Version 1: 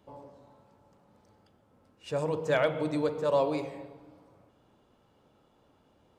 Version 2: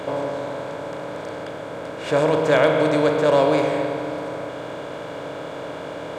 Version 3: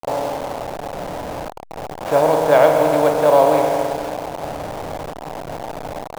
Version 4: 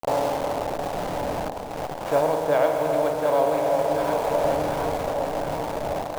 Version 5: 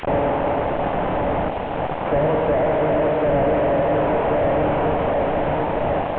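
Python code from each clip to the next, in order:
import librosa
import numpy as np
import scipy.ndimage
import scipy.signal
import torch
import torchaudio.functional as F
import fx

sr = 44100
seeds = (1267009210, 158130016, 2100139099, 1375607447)

y1 = fx.bin_compress(x, sr, power=0.4)
y1 = y1 * 10.0 ** (6.0 / 20.0)
y2 = fx.delta_hold(y1, sr, step_db=-24.0)
y2 = fx.peak_eq(y2, sr, hz=770.0, db=13.0, octaves=0.84)
y2 = y2 * 10.0 ** (-2.0 / 20.0)
y3 = fx.echo_alternate(y2, sr, ms=364, hz=850.0, feedback_pct=76, wet_db=-7.0)
y3 = fx.rider(y3, sr, range_db=4, speed_s=0.5)
y3 = y3 * 10.0 ** (-5.0 / 20.0)
y4 = fx.delta_mod(y3, sr, bps=16000, step_db=-37.5)
y4 = y4 * 10.0 ** (8.0 / 20.0)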